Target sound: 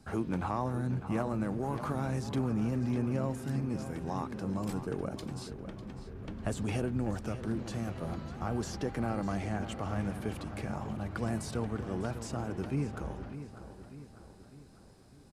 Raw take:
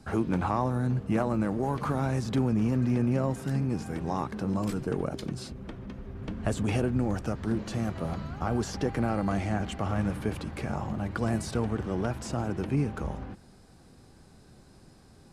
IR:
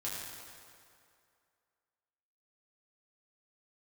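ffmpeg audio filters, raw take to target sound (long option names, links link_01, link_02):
-filter_complex "[0:a]highshelf=frequency=7800:gain=4,asplit=2[link_01][link_02];[link_02]adelay=599,lowpass=frequency=4800:poles=1,volume=-11dB,asplit=2[link_03][link_04];[link_04]adelay=599,lowpass=frequency=4800:poles=1,volume=0.52,asplit=2[link_05][link_06];[link_06]adelay=599,lowpass=frequency=4800:poles=1,volume=0.52,asplit=2[link_07][link_08];[link_08]adelay=599,lowpass=frequency=4800:poles=1,volume=0.52,asplit=2[link_09][link_10];[link_10]adelay=599,lowpass=frequency=4800:poles=1,volume=0.52,asplit=2[link_11][link_12];[link_12]adelay=599,lowpass=frequency=4800:poles=1,volume=0.52[link_13];[link_03][link_05][link_07][link_09][link_11][link_13]amix=inputs=6:normalize=0[link_14];[link_01][link_14]amix=inputs=2:normalize=0,volume=-5.5dB"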